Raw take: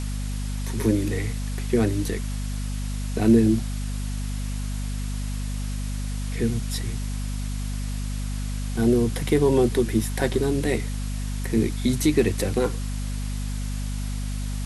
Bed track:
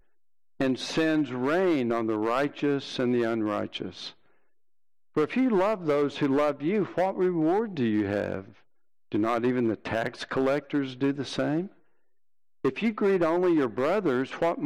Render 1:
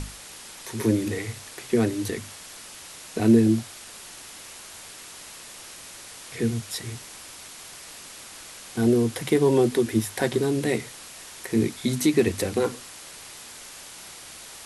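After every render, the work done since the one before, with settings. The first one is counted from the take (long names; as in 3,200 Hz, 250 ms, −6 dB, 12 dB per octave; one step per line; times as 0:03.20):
mains-hum notches 50/100/150/200/250 Hz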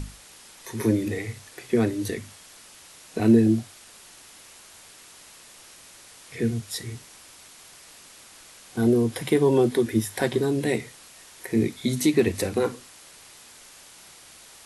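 noise reduction from a noise print 6 dB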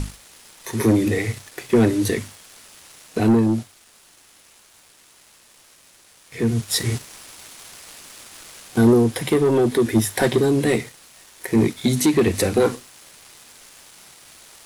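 leveller curve on the samples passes 2
speech leveller 0.5 s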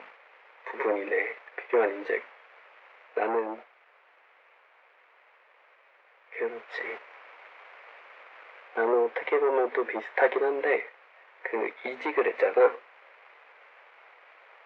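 elliptic band-pass filter 480–2,300 Hz, stop band 70 dB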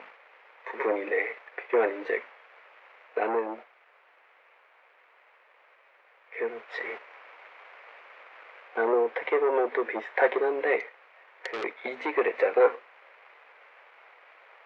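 0:10.79–0:11.64: saturating transformer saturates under 2,500 Hz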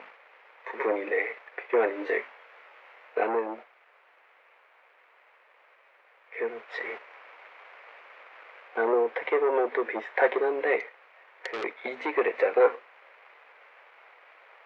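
0:01.95–0:03.24: double-tracking delay 23 ms −3 dB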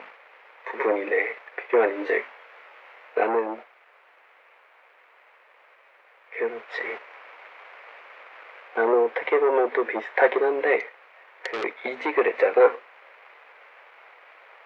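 level +4 dB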